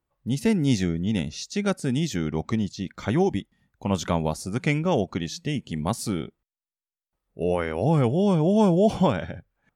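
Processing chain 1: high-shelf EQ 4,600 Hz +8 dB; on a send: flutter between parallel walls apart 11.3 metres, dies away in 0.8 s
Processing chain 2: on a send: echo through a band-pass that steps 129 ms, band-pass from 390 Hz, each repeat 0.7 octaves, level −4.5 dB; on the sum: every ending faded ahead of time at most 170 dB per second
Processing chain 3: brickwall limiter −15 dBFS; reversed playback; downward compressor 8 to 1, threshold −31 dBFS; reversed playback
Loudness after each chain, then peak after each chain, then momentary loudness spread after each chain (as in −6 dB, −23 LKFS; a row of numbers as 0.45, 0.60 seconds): −23.0, −25.0, −36.0 LKFS; −6.5, −7.5, −21.0 dBFS; 11, 13, 5 LU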